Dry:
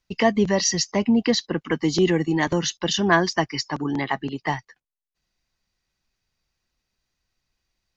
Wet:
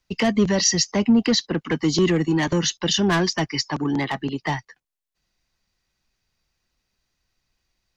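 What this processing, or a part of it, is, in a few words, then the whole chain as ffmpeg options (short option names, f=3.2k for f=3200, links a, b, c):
one-band saturation: -filter_complex "[0:a]acrossover=split=280|3000[a][b][c];[b]asoftclip=type=tanh:threshold=-23dB[d];[a][d][c]amix=inputs=3:normalize=0,volume=3dB"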